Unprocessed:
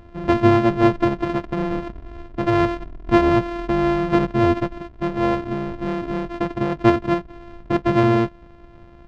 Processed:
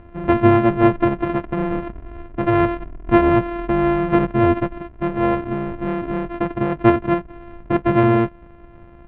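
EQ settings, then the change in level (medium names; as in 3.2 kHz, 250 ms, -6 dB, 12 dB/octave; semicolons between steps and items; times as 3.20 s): low-pass 2.8 kHz 24 dB/octave; +1.5 dB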